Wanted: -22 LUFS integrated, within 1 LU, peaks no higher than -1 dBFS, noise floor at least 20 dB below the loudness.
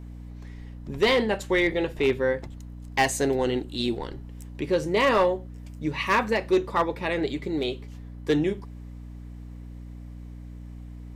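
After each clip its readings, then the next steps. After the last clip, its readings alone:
clipped samples 0.4%; clipping level -14.5 dBFS; hum 60 Hz; highest harmonic 300 Hz; hum level -38 dBFS; loudness -25.5 LUFS; peak level -14.5 dBFS; loudness target -22.0 LUFS
-> clip repair -14.5 dBFS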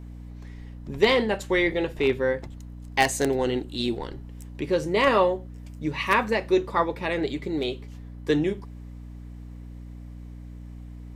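clipped samples 0.0%; hum 60 Hz; highest harmonic 300 Hz; hum level -37 dBFS
-> hum notches 60/120/180/240/300 Hz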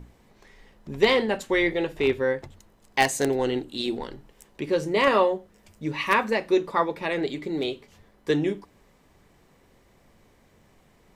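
hum not found; loudness -25.0 LUFS; peak level -5.5 dBFS; loudness target -22.0 LUFS
-> trim +3 dB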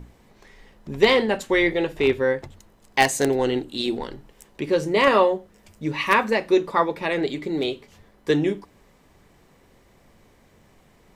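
loudness -22.0 LUFS; peak level -2.5 dBFS; noise floor -57 dBFS

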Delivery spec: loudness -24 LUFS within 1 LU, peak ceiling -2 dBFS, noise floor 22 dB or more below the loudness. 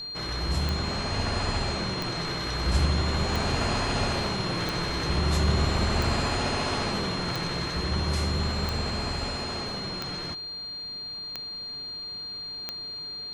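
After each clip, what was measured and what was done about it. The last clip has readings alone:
clicks found 10; steady tone 4.2 kHz; tone level -34 dBFS; loudness -28.5 LUFS; peak level -11.0 dBFS; loudness target -24.0 LUFS
-> de-click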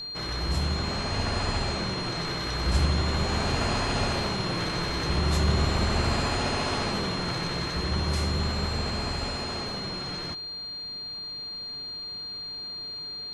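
clicks found 0; steady tone 4.2 kHz; tone level -34 dBFS
-> band-stop 4.2 kHz, Q 30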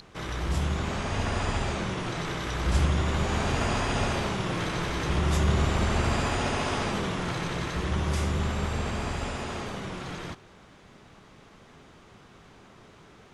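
steady tone not found; loudness -29.0 LUFS; peak level -12.0 dBFS; loudness target -24.0 LUFS
-> trim +5 dB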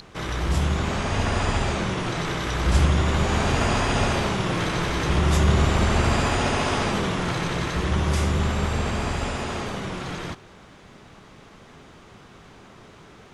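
loudness -24.0 LUFS; peak level -7.0 dBFS; noise floor -48 dBFS

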